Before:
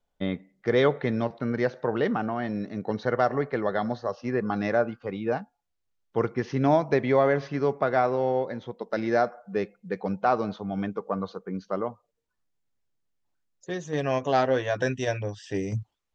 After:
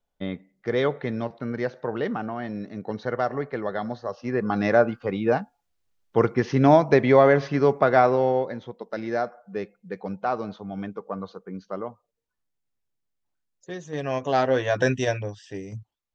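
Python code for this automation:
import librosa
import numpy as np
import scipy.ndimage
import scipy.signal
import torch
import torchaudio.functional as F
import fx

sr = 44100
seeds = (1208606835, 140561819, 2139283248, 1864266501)

y = fx.gain(x, sr, db=fx.line((4.01, -2.0), (4.77, 5.5), (8.09, 5.5), (8.9, -3.0), (13.91, -3.0), (14.94, 5.5), (15.64, -7.0)))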